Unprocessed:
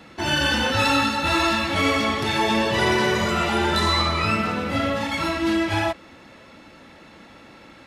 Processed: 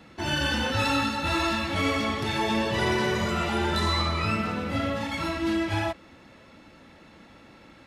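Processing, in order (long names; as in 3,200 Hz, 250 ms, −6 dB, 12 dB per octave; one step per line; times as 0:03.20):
low-shelf EQ 220 Hz +5 dB
level −6 dB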